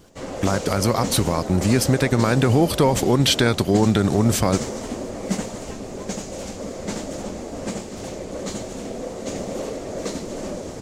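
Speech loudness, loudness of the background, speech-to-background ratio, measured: -19.5 LUFS, -30.0 LUFS, 10.5 dB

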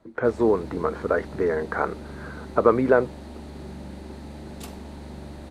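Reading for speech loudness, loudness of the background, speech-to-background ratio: -24.0 LUFS, -40.0 LUFS, 16.0 dB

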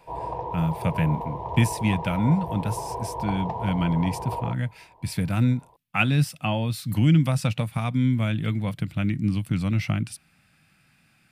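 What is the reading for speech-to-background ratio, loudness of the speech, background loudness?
7.5 dB, -25.5 LUFS, -33.0 LUFS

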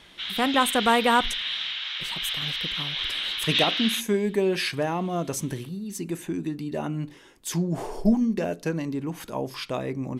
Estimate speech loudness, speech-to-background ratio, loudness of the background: -27.0 LUFS, 0.0 dB, -27.0 LUFS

